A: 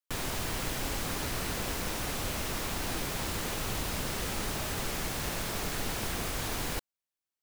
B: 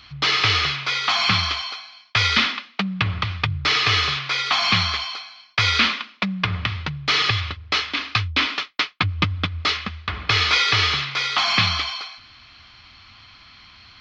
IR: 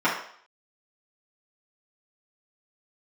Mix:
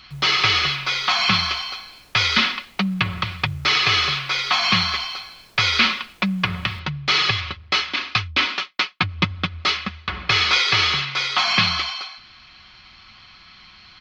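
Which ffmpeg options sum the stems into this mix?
-filter_complex "[0:a]asoftclip=type=tanh:threshold=-30.5dB,volume=-17dB[link_01];[1:a]aecho=1:1:5.4:0.47,volume=0dB[link_02];[link_01][link_02]amix=inputs=2:normalize=0"

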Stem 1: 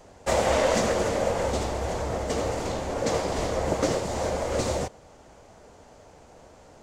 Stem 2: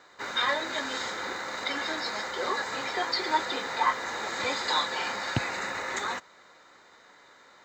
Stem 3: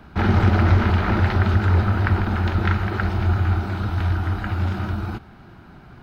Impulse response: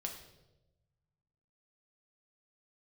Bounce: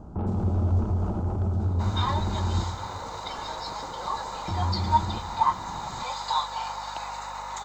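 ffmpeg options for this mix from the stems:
-filter_complex "[0:a]acrossover=split=2900|6200[link_01][link_02][link_03];[link_01]acompressor=threshold=-32dB:ratio=4[link_04];[link_02]acompressor=threshold=-41dB:ratio=4[link_05];[link_03]acompressor=threshold=-49dB:ratio=4[link_06];[link_04][link_05][link_06]amix=inputs=3:normalize=0,highshelf=frequency=4300:gain=-9.5,volume=-11dB,asplit=2[link_07][link_08];[link_08]volume=-7dB[link_09];[1:a]highpass=frequency=910:width_type=q:width=3.5,adelay=1600,volume=-2dB[link_10];[2:a]lowpass=frequency=1200:width=0.5412,lowpass=frequency=1200:width=1.3066,volume=1dB,asplit=3[link_11][link_12][link_13];[link_11]atrim=end=2.64,asetpts=PTS-STARTPTS,afade=type=out:start_time=2.636:duration=0.004:curve=hsin[link_14];[link_12]atrim=start=2.64:end=4.48,asetpts=PTS-STARTPTS,volume=0[link_15];[link_13]atrim=start=4.48,asetpts=PTS-STARTPTS,afade=type=in:duration=0.004:curve=hsin[link_16];[link_14][link_15][link_16]concat=n=3:v=0:a=1,asplit=2[link_17][link_18];[link_18]volume=-13.5dB[link_19];[link_07][link_17]amix=inputs=2:normalize=0,asoftclip=type=tanh:threshold=-20dB,acompressor=threshold=-32dB:ratio=5,volume=0dB[link_20];[3:a]atrim=start_sample=2205[link_21];[link_09][link_19]amix=inputs=2:normalize=0[link_22];[link_22][link_21]afir=irnorm=-1:irlink=0[link_23];[link_10][link_20][link_23]amix=inputs=3:normalize=0,equalizer=frequency=1800:width=1.4:gain=-15,aeval=exprs='val(0)+0.00398*(sin(2*PI*50*n/s)+sin(2*PI*2*50*n/s)/2+sin(2*PI*3*50*n/s)/3+sin(2*PI*4*50*n/s)/4+sin(2*PI*5*50*n/s)/5)':channel_layout=same"

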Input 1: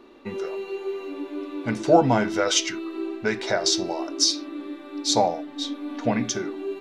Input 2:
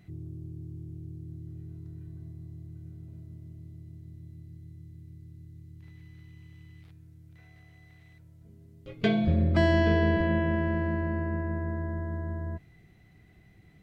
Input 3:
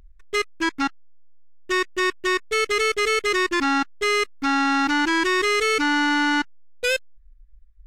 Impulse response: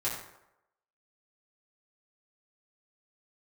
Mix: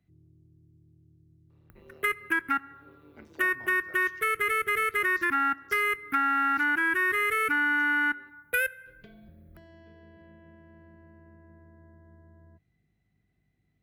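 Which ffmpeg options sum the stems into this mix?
-filter_complex "[0:a]tremolo=f=150:d=0.889,lowpass=frequency=3400:poles=1,equalizer=frequency=150:width_type=o:width=0.77:gain=-11.5,adelay=1500,volume=-17.5dB[link_01];[1:a]acompressor=threshold=-31dB:ratio=10,aeval=exprs='val(0)+0.002*(sin(2*PI*50*n/s)+sin(2*PI*2*50*n/s)/2+sin(2*PI*3*50*n/s)/3+sin(2*PI*4*50*n/s)/4+sin(2*PI*5*50*n/s)/5)':channel_layout=same,volume=-18dB[link_02];[2:a]firequalizer=gain_entry='entry(1000,0);entry(1500,11);entry(4300,-20);entry(6900,-17);entry(11000,14)':delay=0.05:min_phase=1,adelay=1700,volume=1.5dB,asplit=2[link_03][link_04];[link_04]volume=-23dB[link_05];[3:a]atrim=start_sample=2205[link_06];[link_05][link_06]afir=irnorm=-1:irlink=0[link_07];[link_01][link_02][link_03][link_07]amix=inputs=4:normalize=0,highpass=72,acrossover=split=210|960[link_08][link_09][link_10];[link_08]acompressor=threshold=-44dB:ratio=4[link_11];[link_09]acompressor=threshold=-42dB:ratio=4[link_12];[link_10]acompressor=threshold=-27dB:ratio=4[link_13];[link_11][link_12][link_13]amix=inputs=3:normalize=0"

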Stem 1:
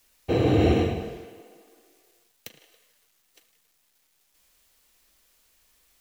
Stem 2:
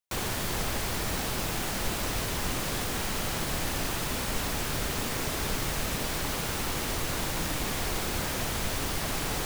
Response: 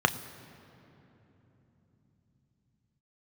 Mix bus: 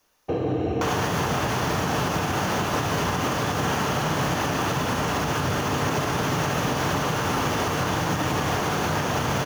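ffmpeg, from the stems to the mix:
-filter_complex "[0:a]acompressor=threshold=-29dB:ratio=3,volume=-3.5dB,asplit=2[link_01][link_02];[link_02]volume=-7.5dB[link_03];[1:a]highpass=58,adelay=700,volume=2dB,asplit=2[link_04][link_05];[link_05]volume=-3.5dB[link_06];[2:a]atrim=start_sample=2205[link_07];[link_03][link_06]amix=inputs=2:normalize=0[link_08];[link_08][link_07]afir=irnorm=-1:irlink=0[link_09];[link_01][link_04][link_09]amix=inputs=3:normalize=0,alimiter=limit=-15dB:level=0:latency=1:release=136"

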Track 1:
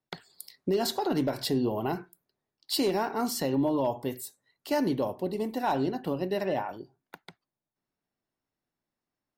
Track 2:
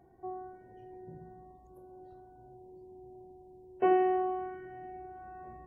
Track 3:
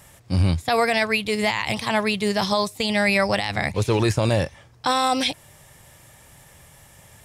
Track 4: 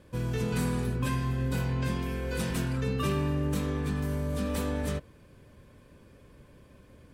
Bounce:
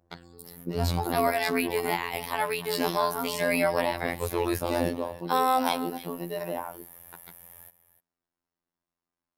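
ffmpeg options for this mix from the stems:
ffmpeg -i stem1.wav -i stem2.wav -i stem3.wav -i stem4.wav -filter_complex "[0:a]equalizer=frequency=1100:width=1.6:gain=5,volume=-1dB[link_01];[1:a]volume=-11.5dB[link_02];[2:a]equalizer=frequency=820:width=0.45:gain=8,aexciter=amount=14.8:drive=6.5:freq=11000,adelay=450,volume=-9dB,asplit=2[link_03][link_04];[link_04]volume=-14.5dB[link_05];[3:a]lowpass=frequency=1300:width=0.5412,lowpass=frequency=1300:width=1.3066,acompressor=threshold=-31dB:ratio=20,volume=-11.5dB,asplit=2[link_06][link_07];[link_07]volume=-23.5dB[link_08];[link_05][link_08]amix=inputs=2:normalize=0,aecho=0:1:297:1[link_09];[link_01][link_02][link_03][link_06][link_09]amix=inputs=5:normalize=0,afftfilt=real='hypot(re,im)*cos(PI*b)':imag='0':win_size=2048:overlap=0.75" out.wav

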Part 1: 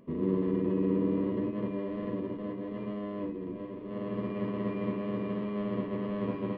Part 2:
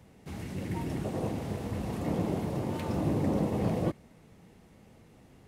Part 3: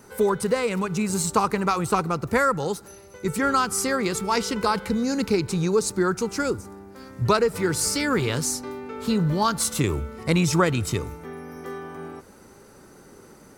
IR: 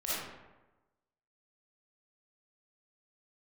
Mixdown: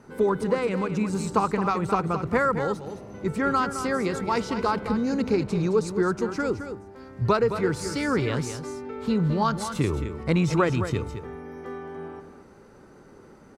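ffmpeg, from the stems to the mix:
-filter_complex "[0:a]volume=-12dB[link_01];[1:a]alimiter=level_in=4.5dB:limit=-24dB:level=0:latency=1,volume=-4.5dB,adelay=1800,volume=-8dB[link_02];[2:a]volume=-2dB,asplit=2[link_03][link_04];[link_04]volume=-9.5dB,aecho=0:1:216:1[link_05];[link_01][link_02][link_03][link_05]amix=inputs=4:normalize=0,aemphasis=mode=reproduction:type=75fm"

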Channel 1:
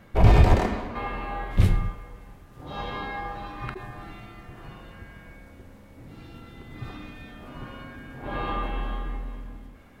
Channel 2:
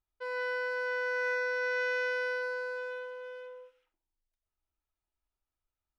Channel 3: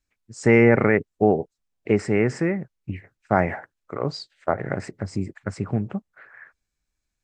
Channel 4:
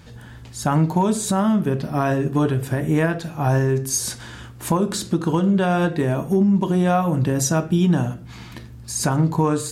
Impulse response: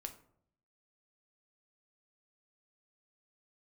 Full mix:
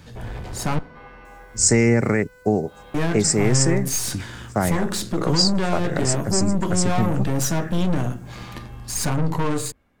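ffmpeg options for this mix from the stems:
-filter_complex "[0:a]asoftclip=type=tanh:threshold=-16.5dB,volume=-12.5dB[link_01];[1:a]acompressor=threshold=-36dB:ratio=6,volume=-11.5dB[link_02];[2:a]aexciter=amount=8.9:drive=7:freq=4600,adelay=1250,volume=2dB[link_03];[3:a]aeval=exprs='(tanh(14.1*val(0)+0.6)-tanh(0.6))/14.1':channel_layout=same,volume=1.5dB,asplit=3[link_04][link_05][link_06];[link_04]atrim=end=0.79,asetpts=PTS-STARTPTS,afade=type=out:start_time=0.786:duration=0.004:curve=hsin[link_07];[link_05]atrim=start=0.79:end=2.94,asetpts=PTS-STARTPTS,volume=0[link_08];[link_06]atrim=start=2.94,asetpts=PTS-STARTPTS,afade=type=in:duration=0.004:curve=hsin[link_09];[link_07][link_08][link_09]concat=n=3:v=0:a=1,asplit=2[link_10][link_11];[link_11]volume=-7dB[link_12];[4:a]atrim=start_sample=2205[link_13];[link_12][link_13]afir=irnorm=-1:irlink=0[link_14];[link_01][link_02][link_03][link_10][link_14]amix=inputs=5:normalize=0,acrossover=split=270|3000[link_15][link_16][link_17];[link_16]acompressor=threshold=-20dB:ratio=6[link_18];[link_15][link_18][link_17]amix=inputs=3:normalize=0"

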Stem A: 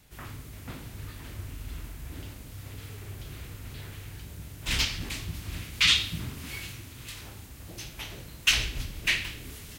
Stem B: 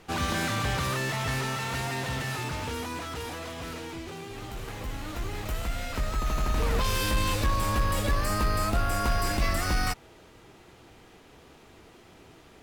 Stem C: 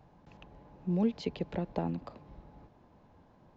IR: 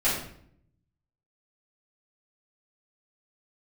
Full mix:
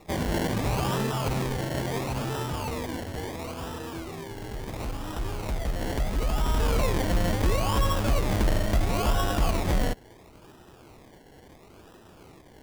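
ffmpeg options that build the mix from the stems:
-filter_complex "[0:a]volume=-13.5dB[link_01];[1:a]lowpass=frequency=5300:width=0.5412,lowpass=frequency=5300:width=1.3066,volume=2dB[link_02];[2:a]volume=-6.5dB[link_03];[link_01][link_02][link_03]amix=inputs=3:normalize=0,acrusher=samples=28:mix=1:aa=0.000001:lfo=1:lforange=16.8:lforate=0.73"

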